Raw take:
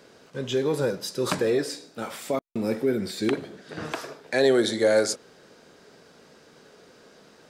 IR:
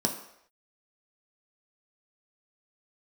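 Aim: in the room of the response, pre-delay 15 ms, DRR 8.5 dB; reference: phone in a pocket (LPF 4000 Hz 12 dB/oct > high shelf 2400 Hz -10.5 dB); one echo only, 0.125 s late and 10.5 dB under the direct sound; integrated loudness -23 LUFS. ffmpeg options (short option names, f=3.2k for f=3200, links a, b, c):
-filter_complex "[0:a]aecho=1:1:125:0.299,asplit=2[a][b];[1:a]atrim=start_sample=2205,adelay=15[c];[b][c]afir=irnorm=-1:irlink=0,volume=-16.5dB[d];[a][d]amix=inputs=2:normalize=0,lowpass=4k,highshelf=f=2.4k:g=-10.5,volume=1dB"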